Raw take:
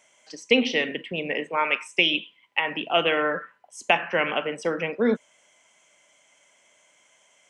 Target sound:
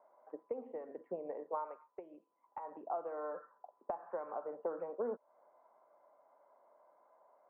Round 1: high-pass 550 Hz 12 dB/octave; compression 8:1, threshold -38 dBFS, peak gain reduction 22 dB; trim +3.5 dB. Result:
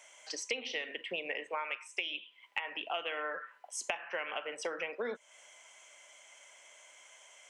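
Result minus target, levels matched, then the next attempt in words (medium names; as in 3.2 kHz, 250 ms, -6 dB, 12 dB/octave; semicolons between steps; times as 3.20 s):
1 kHz band -4.0 dB
high-pass 550 Hz 12 dB/octave; compression 8:1, threshold -38 dBFS, peak gain reduction 22 dB; steep low-pass 1.1 kHz 36 dB/octave; trim +3.5 dB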